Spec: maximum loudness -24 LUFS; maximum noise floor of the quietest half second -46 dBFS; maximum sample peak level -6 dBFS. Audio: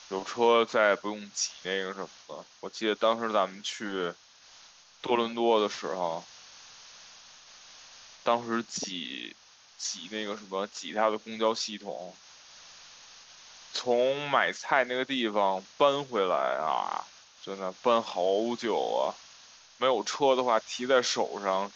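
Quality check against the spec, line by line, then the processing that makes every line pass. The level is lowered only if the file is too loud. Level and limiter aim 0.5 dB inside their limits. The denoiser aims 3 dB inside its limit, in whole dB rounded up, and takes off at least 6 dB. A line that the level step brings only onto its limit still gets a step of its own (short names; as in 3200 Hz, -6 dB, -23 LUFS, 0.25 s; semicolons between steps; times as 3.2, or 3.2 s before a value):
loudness -29.0 LUFS: OK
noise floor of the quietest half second -55 dBFS: OK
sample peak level -10.0 dBFS: OK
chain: none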